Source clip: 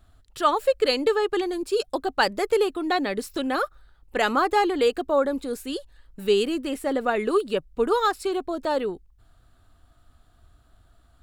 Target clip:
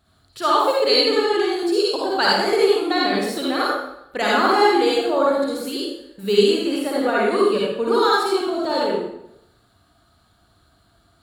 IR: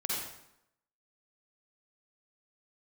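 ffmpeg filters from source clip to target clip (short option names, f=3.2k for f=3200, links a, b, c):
-filter_complex "[0:a]highpass=93,equalizer=f=4.3k:w=5.1:g=8[a];[1:a]atrim=start_sample=2205[b];[a][b]afir=irnorm=-1:irlink=0"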